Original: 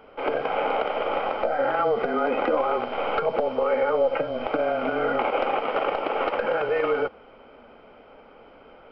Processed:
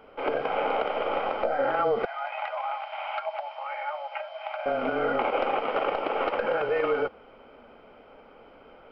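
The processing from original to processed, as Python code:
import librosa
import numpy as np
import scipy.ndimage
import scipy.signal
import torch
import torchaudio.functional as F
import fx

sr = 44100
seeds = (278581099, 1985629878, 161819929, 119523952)

y = fx.cheby_ripple_highpass(x, sr, hz=600.0, ripple_db=6, at=(2.05, 4.66))
y = y * librosa.db_to_amplitude(-2.0)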